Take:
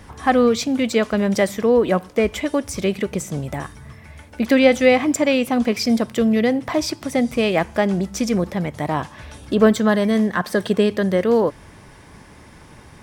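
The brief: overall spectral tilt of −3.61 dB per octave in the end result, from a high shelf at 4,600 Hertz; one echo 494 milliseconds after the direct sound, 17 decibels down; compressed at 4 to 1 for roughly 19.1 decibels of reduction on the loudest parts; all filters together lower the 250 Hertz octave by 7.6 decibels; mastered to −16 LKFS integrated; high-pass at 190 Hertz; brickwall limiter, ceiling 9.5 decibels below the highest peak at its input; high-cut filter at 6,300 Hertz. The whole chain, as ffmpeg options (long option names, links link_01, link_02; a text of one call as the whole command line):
ffmpeg -i in.wav -af "highpass=190,lowpass=6300,equalizer=frequency=250:width_type=o:gain=-7,highshelf=frequency=4600:gain=5.5,acompressor=threshold=-35dB:ratio=4,alimiter=level_in=3dB:limit=-24dB:level=0:latency=1,volume=-3dB,aecho=1:1:494:0.141,volume=22.5dB" out.wav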